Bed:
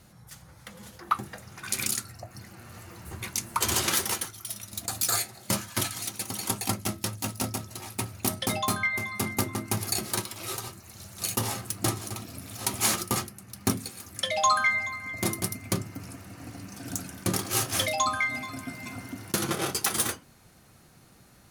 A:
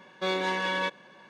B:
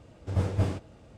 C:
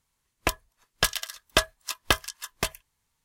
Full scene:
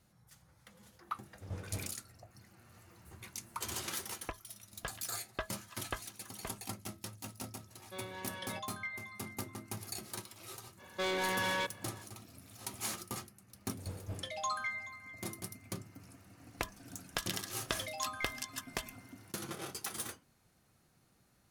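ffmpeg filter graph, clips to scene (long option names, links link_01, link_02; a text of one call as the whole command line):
ffmpeg -i bed.wav -i cue0.wav -i cue1.wav -i cue2.wav -filter_complex "[2:a]asplit=2[link_01][link_02];[3:a]asplit=2[link_03][link_04];[1:a]asplit=2[link_05][link_06];[0:a]volume=-14dB[link_07];[link_03]lowpass=2000[link_08];[link_06]asoftclip=type=hard:threshold=-29dB[link_09];[link_04]acompressor=threshold=-27dB:ratio=6:attack=3.2:release=140:knee=1:detection=peak[link_10];[link_01]atrim=end=1.17,asetpts=PTS-STARTPTS,volume=-15.5dB,afade=type=in:duration=0.004:curve=hsin,afade=type=out:start_time=1.166:duration=0.004:curve=hsin,adelay=1140[link_11];[link_08]atrim=end=3.24,asetpts=PTS-STARTPTS,volume=-15dB,afade=type=in:duration=0.004:curve=hsin,afade=type=out:start_time=3.236:duration=0.004:curve=hsin,adelay=3820[link_12];[link_05]atrim=end=1.29,asetpts=PTS-STARTPTS,volume=-17.5dB,afade=type=in:duration=0.004:curve=hsin,afade=type=out:start_time=1.286:duration=0.004:curve=hsin,adelay=339570S[link_13];[link_09]atrim=end=1.29,asetpts=PTS-STARTPTS,volume=-2dB,afade=type=in:duration=0.05,afade=type=out:start_time=1.24:duration=0.05,adelay=10770[link_14];[link_02]atrim=end=1.17,asetpts=PTS-STARTPTS,volume=-16.5dB,afade=type=in:duration=0.004:curve=hsin,afade=type=out:start_time=1.166:duration=0.004:curve=hsin,adelay=13500[link_15];[link_10]atrim=end=3.24,asetpts=PTS-STARTPTS,volume=-4.5dB,afade=type=in:duration=0.004:curve=hsin,afade=type=out:start_time=3.236:duration=0.004:curve=hsin,adelay=16140[link_16];[link_07][link_11][link_12][link_13][link_14][link_15][link_16]amix=inputs=7:normalize=0" out.wav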